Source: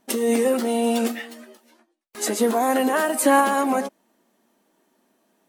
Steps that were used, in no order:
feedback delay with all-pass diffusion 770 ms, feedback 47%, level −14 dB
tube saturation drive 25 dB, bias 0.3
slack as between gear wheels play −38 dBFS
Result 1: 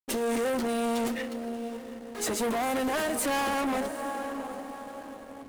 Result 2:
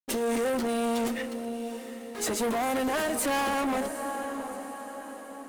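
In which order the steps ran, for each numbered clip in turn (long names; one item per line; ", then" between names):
feedback delay with all-pass diffusion, then tube saturation, then slack as between gear wheels
slack as between gear wheels, then feedback delay with all-pass diffusion, then tube saturation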